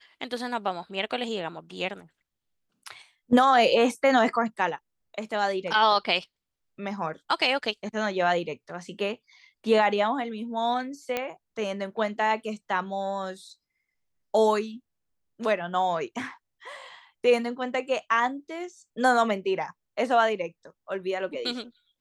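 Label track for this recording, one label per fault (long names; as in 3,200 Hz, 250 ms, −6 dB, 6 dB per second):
11.170000	11.170000	click −13 dBFS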